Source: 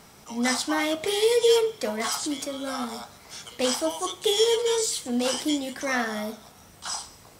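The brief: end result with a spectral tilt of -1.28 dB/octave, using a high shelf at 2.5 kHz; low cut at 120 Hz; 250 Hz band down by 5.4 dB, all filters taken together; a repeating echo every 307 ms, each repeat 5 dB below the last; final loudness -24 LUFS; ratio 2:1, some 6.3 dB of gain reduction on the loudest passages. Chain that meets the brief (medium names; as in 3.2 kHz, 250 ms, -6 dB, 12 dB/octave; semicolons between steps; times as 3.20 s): high-pass 120 Hz; peaking EQ 250 Hz -6 dB; treble shelf 2.5 kHz -3.5 dB; compression 2:1, threshold -29 dBFS; feedback delay 307 ms, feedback 56%, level -5 dB; trim +6 dB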